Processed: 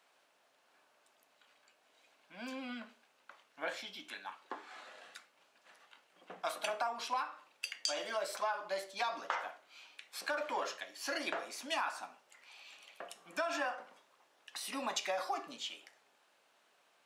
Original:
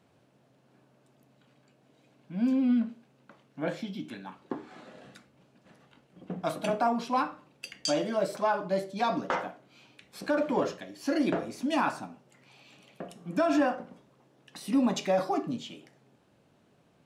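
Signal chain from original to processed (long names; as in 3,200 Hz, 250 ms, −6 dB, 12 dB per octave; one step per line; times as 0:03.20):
high-pass filter 970 Hz 12 dB per octave
downward compressor 6 to 1, threshold −35 dBFS, peak gain reduction 9 dB
level +2.5 dB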